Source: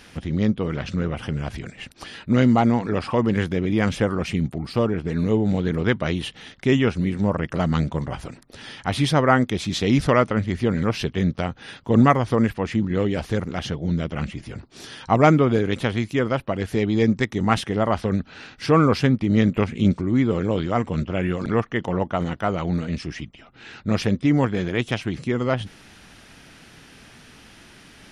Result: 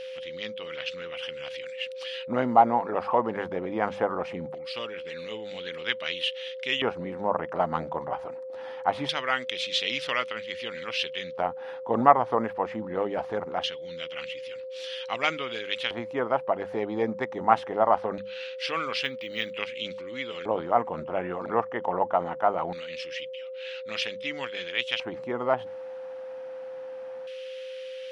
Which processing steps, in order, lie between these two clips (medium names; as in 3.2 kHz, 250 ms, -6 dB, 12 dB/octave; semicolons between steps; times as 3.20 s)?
LFO band-pass square 0.22 Hz 840–3000 Hz; whistle 520 Hz -41 dBFS; hum notches 50/100/150/200 Hz; 19.04–19.51 s: decimation joined by straight lines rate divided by 2×; trim +5.5 dB